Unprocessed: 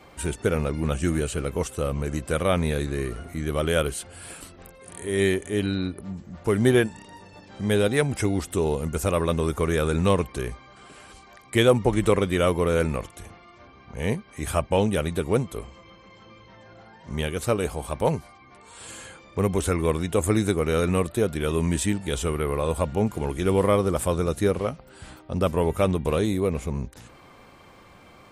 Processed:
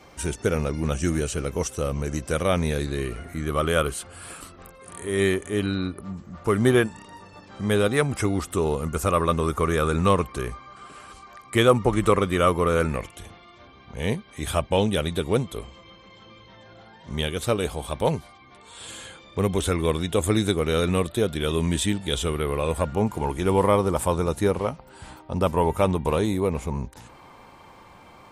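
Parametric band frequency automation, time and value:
parametric band +9.5 dB 0.34 octaves
0:02.75 5,800 Hz
0:03.45 1,200 Hz
0:12.81 1,200 Hz
0:13.22 3,500 Hz
0:22.51 3,500 Hz
0:23.05 910 Hz

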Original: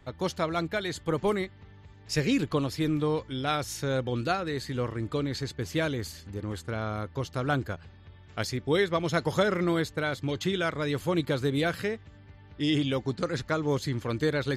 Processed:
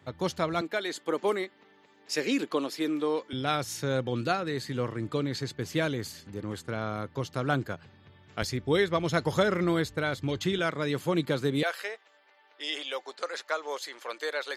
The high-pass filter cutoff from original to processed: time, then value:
high-pass filter 24 dB per octave
88 Hz
from 0:00.61 260 Hz
from 0:03.33 110 Hz
from 0:08.42 43 Hz
from 0:10.59 130 Hz
from 0:11.63 540 Hz

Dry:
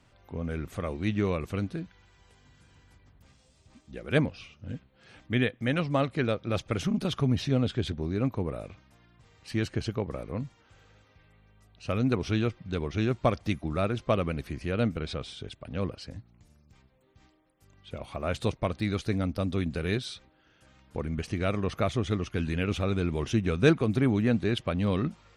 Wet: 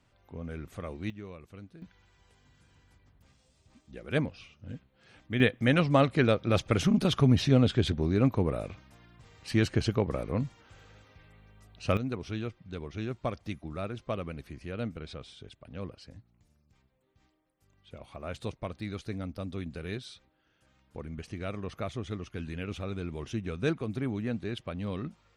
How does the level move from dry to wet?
−6 dB
from 0:01.10 −16.5 dB
from 0:01.82 −4 dB
from 0:05.40 +3.5 dB
from 0:11.97 −8 dB

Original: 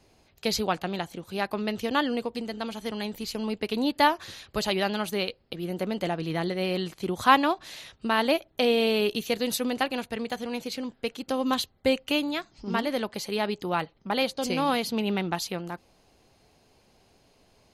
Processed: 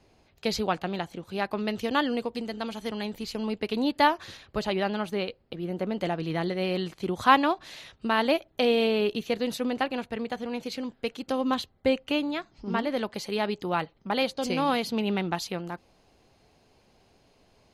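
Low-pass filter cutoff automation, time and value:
low-pass filter 6 dB per octave
4,100 Hz
from 0:01.59 8,300 Hz
from 0:02.90 4,900 Hz
from 0:04.37 2,000 Hz
from 0:05.99 4,900 Hz
from 0:08.87 2,500 Hz
from 0:10.63 5,500 Hz
from 0:11.41 2,600 Hz
from 0:12.97 5,700 Hz

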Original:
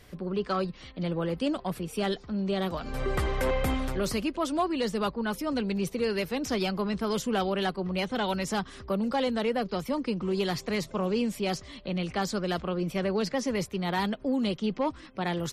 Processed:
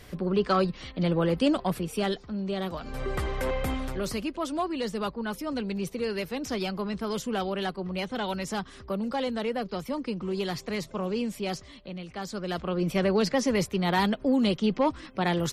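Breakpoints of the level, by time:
0:01.60 +5 dB
0:02.39 −2 dB
0:11.61 −2 dB
0:12.05 −9 dB
0:12.90 +4 dB

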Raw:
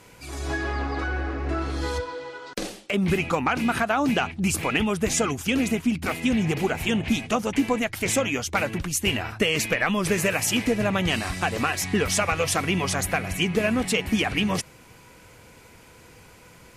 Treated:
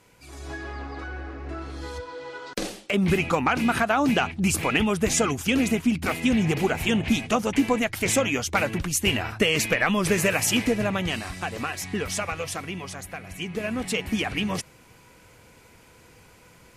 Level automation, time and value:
0:01.95 −7.5 dB
0:02.36 +1 dB
0:10.58 +1 dB
0:11.30 −5.5 dB
0:12.23 −5.5 dB
0:13.09 −12.5 dB
0:13.96 −3 dB

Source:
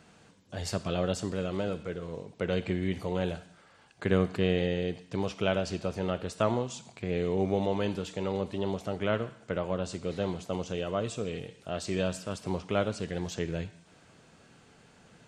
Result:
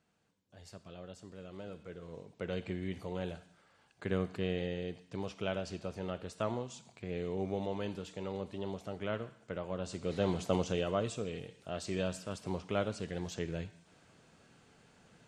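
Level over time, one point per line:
0:01.17 −19 dB
0:02.18 −8 dB
0:09.67 −8 dB
0:10.47 +3 dB
0:11.30 −5 dB

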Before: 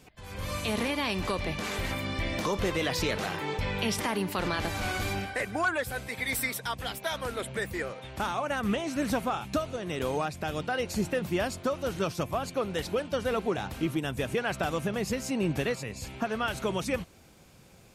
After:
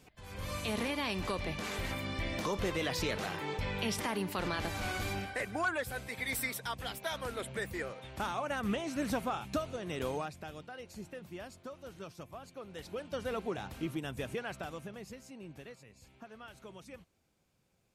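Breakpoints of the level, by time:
0:10.07 −5 dB
0:10.70 −16.5 dB
0:12.60 −16.5 dB
0:13.19 −7.5 dB
0:14.26 −7.5 dB
0:15.38 −20 dB

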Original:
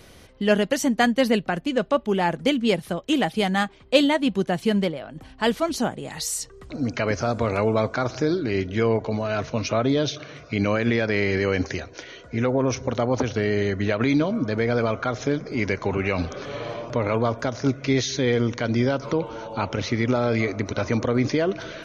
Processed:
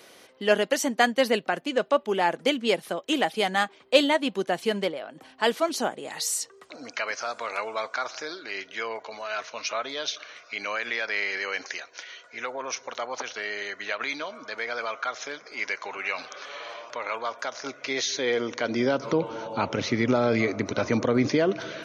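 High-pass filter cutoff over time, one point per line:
0:06.32 370 Hz
0:07.06 1,000 Hz
0:17.29 1,000 Hz
0:18.60 370 Hz
0:19.20 150 Hz

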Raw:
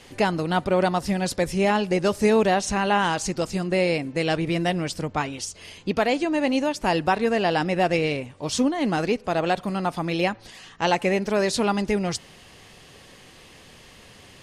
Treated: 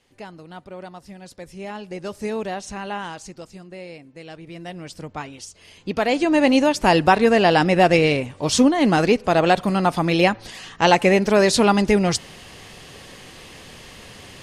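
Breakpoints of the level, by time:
0:01.23 −16 dB
0:02.21 −8 dB
0:02.92 −8 dB
0:03.72 −15.5 dB
0:04.38 −15.5 dB
0:05.02 −6 dB
0:05.65 −6 dB
0:06.34 +6.5 dB

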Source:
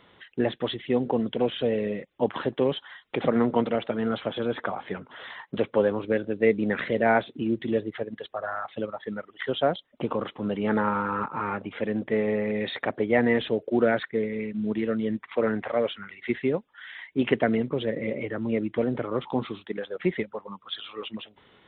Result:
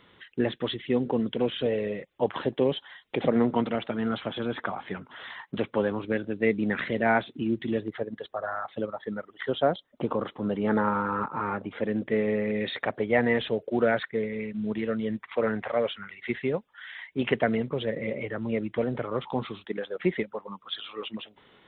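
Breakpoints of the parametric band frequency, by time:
parametric band −5.5 dB 0.79 octaves
700 Hz
from 0:01.66 240 Hz
from 0:02.39 1,300 Hz
from 0:03.47 510 Hz
from 0:07.88 2,600 Hz
from 0:11.89 830 Hz
from 0:12.80 300 Hz
from 0:19.64 83 Hz

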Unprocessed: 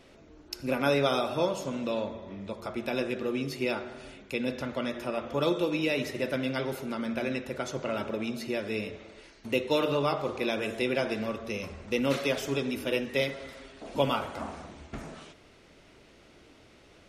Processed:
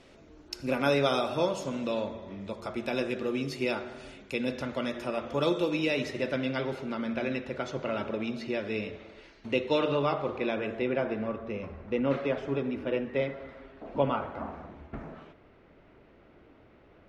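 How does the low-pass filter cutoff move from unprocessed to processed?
0:05.68 9,600 Hz
0:06.61 4,200 Hz
0:09.79 4,200 Hz
0:11.04 1,700 Hz

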